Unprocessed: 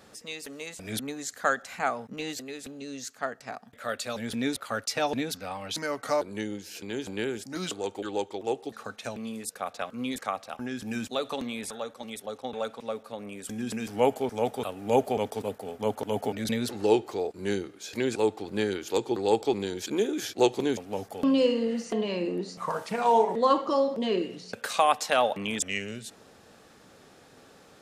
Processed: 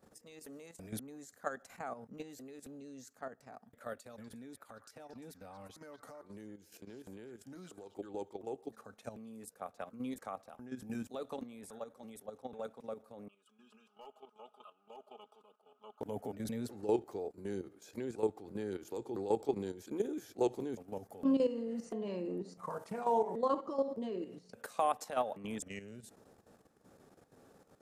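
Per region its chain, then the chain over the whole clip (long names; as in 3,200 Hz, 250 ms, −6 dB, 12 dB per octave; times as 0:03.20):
0:04.01–0:07.97: downward compressor, threshold −39 dBFS + echo through a band-pass that steps 116 ms, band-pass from 1,400 Hz, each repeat 1.4 octaves, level −5 dB
0:13.28–0:16.01: pair of resonant band-passes 1,900 Hz, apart 1.2 octaves + gain into a clipping stage and back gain 29.5 dB + comb filter 4.8 ms, depth 87%
whole clip: output level in coarse steps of 11 dB; parametric band 3,300 Hz −12 dB 2.4 octaves; level −4.5 dB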